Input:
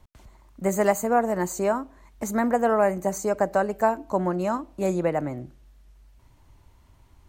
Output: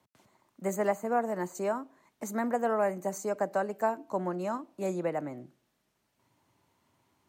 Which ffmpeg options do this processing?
-filter_complex "[0:a]asettb=1/sr,asplit=3[a][b][c];[a]atrim=end=0.764[d];[b]atrim=start=0.76:end=1.55,asetpts=PTS-STARTPTS,afade=t=in:d=0.004:c=qsin,afade=t=out:st=0.786:d=0.004:c=qsin,acrossover=split=2700[e][f];[f]acompressor=threshold=-43dB:ratio=4:attack=1:release=60[g];[e][g]amix=inputs=2:normalize=0[h];[c]atrim=start=1.546[i];[d][h]acrossfade=d=0.004:c1=hsin:c2=qsin[j];[j][i]acrossfade=d=0.004:c1=qsin:c2=hsin,acrossover=split=130|560|2900[k][l][m][n];[k]acrusher=bits=3:mix=0:aa=0.5[o];[o][l][m][n]amix=inputs=4:normalize=0,volume=-7dB"

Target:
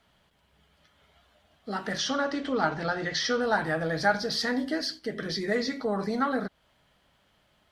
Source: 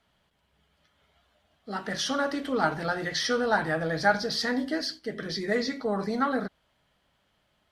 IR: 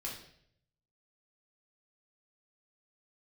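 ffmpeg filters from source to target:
-filter_complex "[0:a]asettb=1/sr,asplit=3[a][b][c];[a]atrim=end=1.984[d];[b]atrim=start=1.98:end=3.41,asetpts=PTS-STARTPTS,afade=t=in:d=0.004:c=qsin,afade=t=out:st=1.426:d=0.004:c=qsin,lowpass=f=7k:w=0.5412,lowpass=f=7k:w=1.3066[e];[c]atrim=start=3.406[f];[d][e]acrossfade=d=0.004:c1=hsin:c2=qsin[g];[g][f]acrossfade=d=0.004:c1=qsin:c2=hsin,asplit=2[h][i];[i]acompressor=threshold=-38dB:ratio=6,volume=1.5dB[j];[h][j]amix=inputs=2:normalize=0,volume=-2.5dB"

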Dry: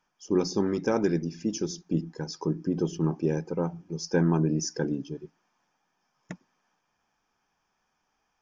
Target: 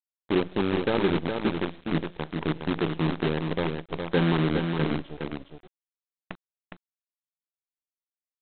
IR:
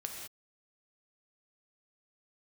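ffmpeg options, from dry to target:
-af "aresample=8000,acrusher=bits=5:dc=4:mix=0:aa=0.000001,aresample=44100,aecho=1:1:413:0.531"

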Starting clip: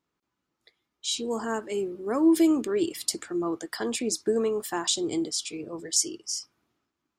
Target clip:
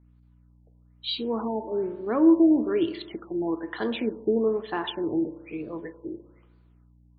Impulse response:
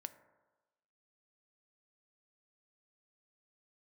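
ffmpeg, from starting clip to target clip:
-filter_complex "[0:a]aeval=exprs='val(0)+0.00126*(sin(2*PI*60*n/s)+sin(2*PI*2*60*n/s)/2+sin(2*PI*3*60*n/s)/3+sin(2*PI*4*60*n/s)/4+sin(2*PI*5*60*n/s)/5)':c=same[a];[1:a]atrim=start_sample=2205[b];[a][b]afir=irnorm=-1:irlink=0,afftfilt=real='re*lt(b*sr/1024,900*pow(4800/900,0.5+0.5*sin(2*PI*1.1*pts/sr)))':imag='im*lt(b*sr/1024,900*pow(4800/900,0.5+0.5*sin(2*PI*1.1*pts/sr)))':win_size=1024:overlap=0.75,volume=6dB"

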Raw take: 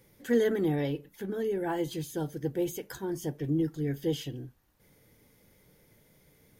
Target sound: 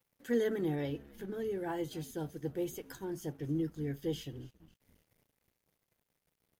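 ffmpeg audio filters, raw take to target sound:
-filter_complex "[0:a]asplit=6[a][b][c][d][e][f];[b]adelay=273,afreqshift=-80,volume=-21dB[g];[c]adelay=546,afreqshift=-160,volume=-25.4dB[h];[d]adelay=819,afreqshift=-240,volume=-29.9dB[i];[e]adelay=1092,afreqshift=-320,volume=-34.3dB[j];[f]adelay=1365,afreqshift=-400,volume=-38.7dB[k];[a][g][h][i][j][k]amix=inputs=6:normalize=0,aeval=exprs='sgn(val(0))*max(abs(val(0))-0.00119,0)':c=same,volume=-5.5dB"

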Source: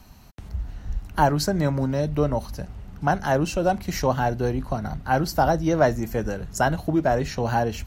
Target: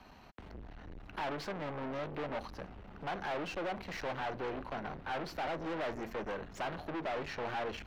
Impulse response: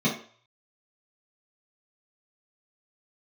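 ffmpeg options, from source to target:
-filter_complex "[0:a]aeval=exprs='(tanh(63.1*val(0)+0.45)-tanh(0.45))/63.1':c=same,acrossover=split=270 3800:gain=0.224 1 0.0794[a][b][c];[a][b][c]amix=inputs=3:normalize=0,volume=2dB"

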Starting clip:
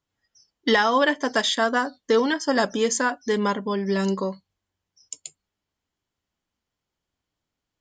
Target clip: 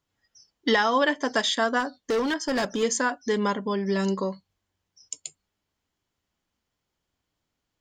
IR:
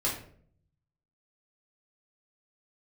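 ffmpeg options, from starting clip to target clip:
-filter_complex "[0:a]asplit=2[a][b];[b]acompressor=threshold=-35dB:ratio=6,volume=0dB[c];[a][c]amix=inputs=2:normalize=0,asettb=1/sr,asplit=3[d][e][f];[d]atrim=end=1.804[g];[e]atrim=start=1.8:end=2.83,asetpts=PTS-STARTPTS,afade=t=in:d=0.004:c=qsin,afade=t=out:st=1.026:d=0.004:c=qsin,volume=17.5dB,asoftclip=hard,volume=-17.5dB[h];[f]atrim=start=2.826[i];[g][h]acrossfade=d=0.004:c1=hsin:c2=qsin[j];[j][i]acrossfade=d=0.004:c1=qsin:c2=hsin,volume=-3.5dB"

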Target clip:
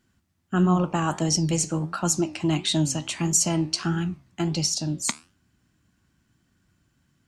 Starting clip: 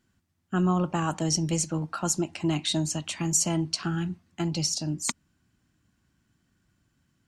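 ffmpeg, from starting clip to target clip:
-af "flanger=delay=9.9:depth=6.8:regen=81:speed=1.5:shape=triangular,volume=7.5dB"

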